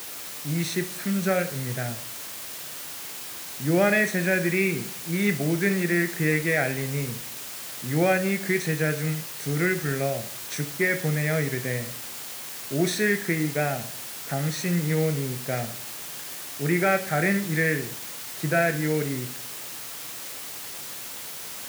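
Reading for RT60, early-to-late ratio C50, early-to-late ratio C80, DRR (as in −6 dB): 0.50 s, 13.0 dB, 17.5 dB, 8.0 dB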